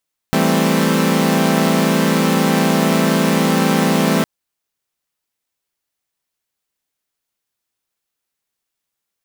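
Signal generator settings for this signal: chord E3/G3/A3/C4 saw, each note -16 dBFS 3.91 s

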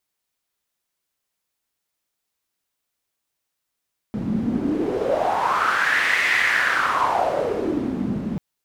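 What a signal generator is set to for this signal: wind-like swept noise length 4.24 s, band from 200 Hz, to 2 kHz, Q 5.3, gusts 1, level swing 4.5 dB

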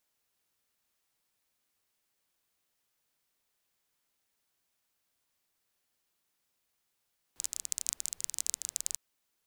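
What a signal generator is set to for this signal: rain from filtered ticks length 1.60 s, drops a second 21, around 7.2 kHz, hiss -26.5 dB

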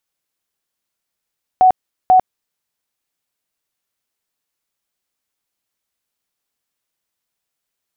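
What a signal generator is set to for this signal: tone bursts 744 Hz, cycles 72, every 0.49 s, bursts 2, -6 dBFS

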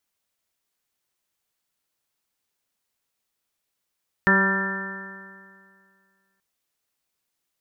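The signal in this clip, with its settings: stretched partials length 2.13 s, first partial 192 Hz, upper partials -5/-9.5/-15/-5.5/-12/-2.5/-5.5/4 dB, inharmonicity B 0.00079, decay 2.14 s, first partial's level -20 dB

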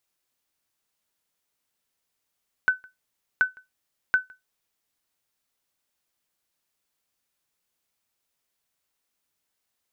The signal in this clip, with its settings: sonar ping 1.51 kHz, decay 0.17 s, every 0.73 s, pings 3, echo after 0.16 s, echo -27.5 dB -11.5 dBFS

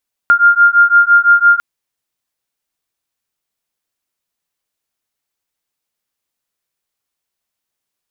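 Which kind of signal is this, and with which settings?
beating tones 1.4 kHz, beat 5.9 Hz, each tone -9 dBFS 1.30 s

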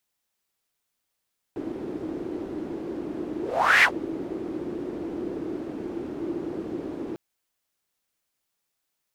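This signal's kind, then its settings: whoosh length 5.60 s, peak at 2.27 s, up 0.45 s, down 0.10 s, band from 330 Hz, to 2 kHz, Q 5.7, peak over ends 16 dB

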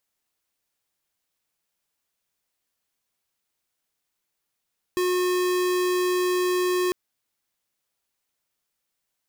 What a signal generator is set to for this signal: tone square 362 Hz -23 dBFS 1.95 s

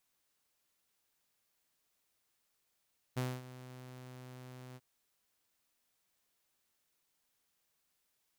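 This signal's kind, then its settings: ADSR saw 127 Hz, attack 18 ms, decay 236 ms, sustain -16.5 dB, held 1.60 s, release 40 ms -29.5 dBFS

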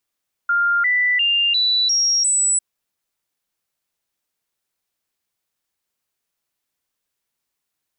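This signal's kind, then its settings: stepped sine 1.4 kHz up, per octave 2, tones 6, 0.35 s, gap 0.00 s -14.5 dBFS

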